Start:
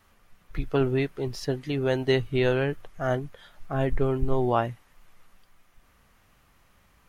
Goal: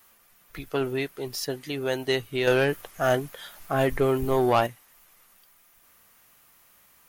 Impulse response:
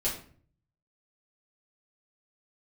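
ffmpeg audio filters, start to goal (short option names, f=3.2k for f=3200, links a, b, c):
-filter_complex "[0:a]aemphasis=mode=production:type=bsi,asettb=1/sr,asplit=3[a][b][c];[a]atrim=end=2.474[d];[b]atrim=start=2.47:end=4.67,asetpts=PTS-STARTPTS,afade=t=in:d=0.004:c=qsin,afade=t=out:st=2.196:d=0.004:c=qsin,acontrast=78[e];[c]atrim=start=4.666[f];[d][e]acrossfade=d=0.004:c1=hsin:c2=qsin[g];[g][f]acrossfade=d=0.004:c1=qsin:c2=hsin,asoftclip=type=tanh:threshold=-12dB"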